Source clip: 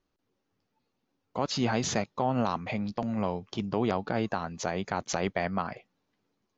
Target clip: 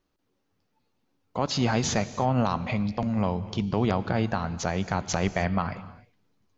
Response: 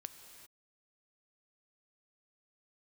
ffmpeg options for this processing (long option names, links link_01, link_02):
-filter_complex "[0:a]asplit=2[link_01][link_02];[link_02]asubboost=boost=5.5:cutoff=170[link_03];[1:a]atrim=start_sample=2205,afade=type=out:start_time=0.37:duration=0.01,atrim=end_sample=16758[link_04];[link_03][link_04]afir=irnorm=-1:irlink=0,volume=6dB[link_05];[link_01][link_05]amix=inputs=2:normalize=0,volume=-3.5dB"